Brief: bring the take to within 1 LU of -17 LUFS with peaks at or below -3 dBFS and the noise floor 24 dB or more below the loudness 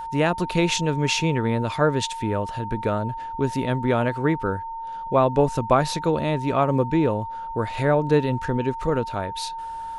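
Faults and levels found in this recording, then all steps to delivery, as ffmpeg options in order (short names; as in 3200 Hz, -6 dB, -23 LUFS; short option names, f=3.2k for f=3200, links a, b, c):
steady tone 910 Hz; tone level -30 dBFS; loudness -23.5 LUFS; peak -5.0 dBFS; loudness target -17.0 LUFS
-> -af "bandreject=f=910:w=30"
-af "volume=6.5dB,alimiter=limit=-3dB:level=0:latency=1"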